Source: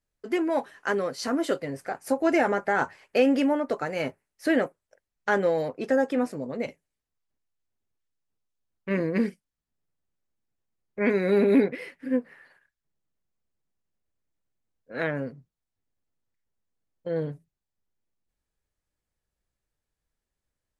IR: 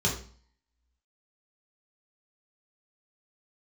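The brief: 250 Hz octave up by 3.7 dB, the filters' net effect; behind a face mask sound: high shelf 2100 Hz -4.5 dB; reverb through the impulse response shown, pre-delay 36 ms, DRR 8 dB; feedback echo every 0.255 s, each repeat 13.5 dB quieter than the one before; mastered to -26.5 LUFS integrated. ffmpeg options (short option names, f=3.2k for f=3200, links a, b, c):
-filter_complex "[0:a]equalizer=f=250:t=o:g=4.5,aecho=1:1:255|510:0.211|0.0444,asplit=2[a][b];[1:a]atrim=start_sample=2205,adelay=36[c];[b][c]afir=irnorm=-1:irlink=0,volume=-17.5dB[d];[a][d]amix=inputs=2:normalize=0,highshelf=f=2.1k:g=-4.5,volume=-4dB"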